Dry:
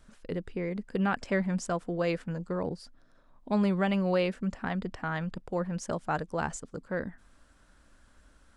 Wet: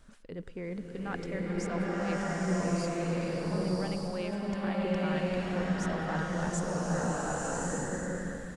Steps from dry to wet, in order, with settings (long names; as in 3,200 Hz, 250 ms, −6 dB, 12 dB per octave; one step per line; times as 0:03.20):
reversed playback
downward compressor 10 to 1, threshold −38 dBFS, peak gain reduction 16 dB
reversed playback
far-end echo of a speakerphone 110 ms, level −16 dB
automatic gain control gain up to 3.5 dB
slow-attack reverb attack 1,170 ms, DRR −6.5 dB